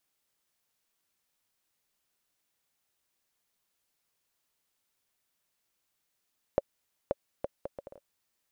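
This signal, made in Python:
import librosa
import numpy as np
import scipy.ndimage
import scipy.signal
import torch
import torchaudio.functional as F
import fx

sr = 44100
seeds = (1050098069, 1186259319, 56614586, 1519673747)

y = fx.bouncing_ball(sr, first_gap_s=0.53, ratio=0.63, hz=560.0, decay_ms=30.0, level_db=-12.0)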